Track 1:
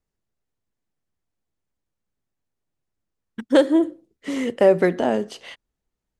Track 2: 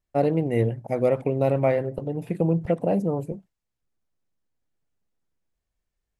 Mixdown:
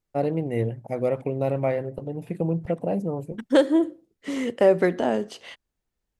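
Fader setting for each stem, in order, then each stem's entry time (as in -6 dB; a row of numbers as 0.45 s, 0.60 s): -2.5 dB, -3.0 dB; 0.00 s, 0.00 s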